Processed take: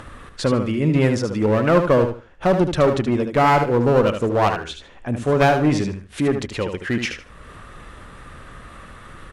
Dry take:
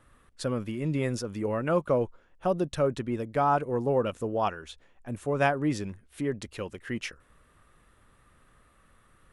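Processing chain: de-esser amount 80%; low-pass 6.9 kHz 12 dB/octave; in parallel at -1 dB: upward compressor, threshold -32 dBFS; on the sum: one-sided clip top -21.5 dBFS; on a send: feedback delay 75 ms, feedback 22%, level -7.5 dB; on the sum: trim +5.5 dB

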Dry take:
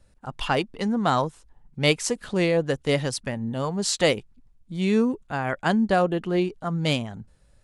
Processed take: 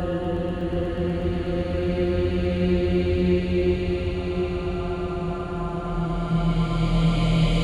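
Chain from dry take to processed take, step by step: octave divider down 2 oct, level -1 dB; Paulstretch 11×, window 0.50 s, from 6.14 s; echo with a slow build-up 122 ms, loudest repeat 5, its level -11.5 dB; trim -2 dB

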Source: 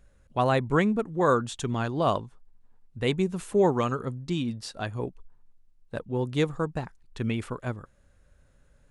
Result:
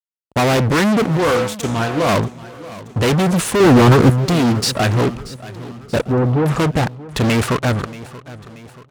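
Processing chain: 1.17–2.09 s: feedback comb 100 Hz, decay 0.6 s, harmonics odd, mix 80%; fuzz box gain 41 dB, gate -46 dBFS; high-pass 49 Hz; 3.60–4.10 s: bass shelf 370 Hz +11 dB; 6.06–6.46 s: low-pass 1.1 kHz 12 dB/octave; feedback delay 631 ms, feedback 51%, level -18 dB; loudspeaker Doppler distortion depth 0.79 ms

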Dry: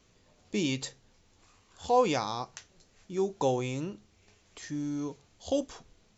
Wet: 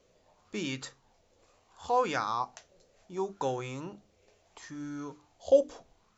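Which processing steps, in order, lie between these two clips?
hum notches 50/100/150/200/250/300 Hz; sweeping bell 0.71 Hz 520–1500 Hz +15 dB; trim -5.5 dB

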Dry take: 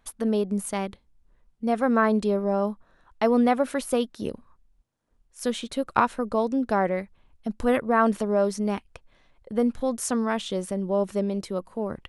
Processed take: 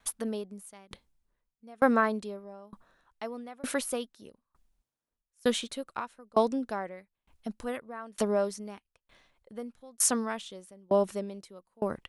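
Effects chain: tilt EQ +1.5 dB/octave; sawtooth tremolo in dB decaying 1.1 Hz, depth 30 dB; trim +3 dB

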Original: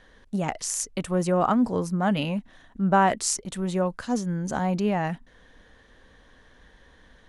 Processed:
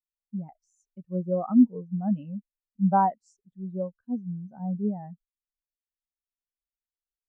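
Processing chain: treble shelf 8.9 kHz -10 dB; spectral contrast expander 2.5:1

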